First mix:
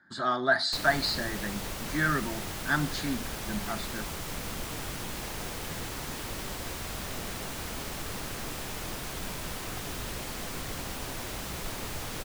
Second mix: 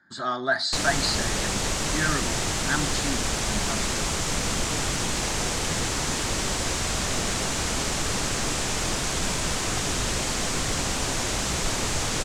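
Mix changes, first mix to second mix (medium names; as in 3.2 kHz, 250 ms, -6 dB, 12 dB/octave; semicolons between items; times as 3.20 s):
background +9.5 dB; master: add resonant low-pass 7.4 kHz, resonance Q 2.1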